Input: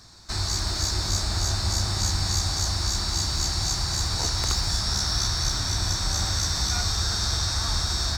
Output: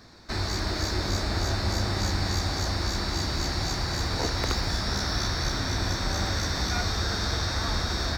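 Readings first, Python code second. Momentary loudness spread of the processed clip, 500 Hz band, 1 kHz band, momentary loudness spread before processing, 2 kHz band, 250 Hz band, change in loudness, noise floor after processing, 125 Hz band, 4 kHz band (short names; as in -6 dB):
1 LU, +6.0 dB, +1.5 dB, 1 LU, +3.0 dB, +5.0 dB, -3.0 dB, -31 dBFS, -1.5 dB, -4.5 dB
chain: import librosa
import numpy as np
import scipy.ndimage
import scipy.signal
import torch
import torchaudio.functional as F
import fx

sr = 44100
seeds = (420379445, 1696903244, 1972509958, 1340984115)

y = fx.graphic_eq_10(x, sr, hz=(250, 500, 2000, 8000), db=(8, 9, 7, -10))
y = y * librosa.db_to_amplitude(-2.5)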